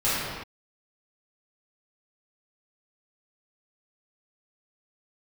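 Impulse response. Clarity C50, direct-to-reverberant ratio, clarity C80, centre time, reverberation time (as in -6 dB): -3.5 dB, -14.0 dB, -1.0 dB, 0.117 s, not exponential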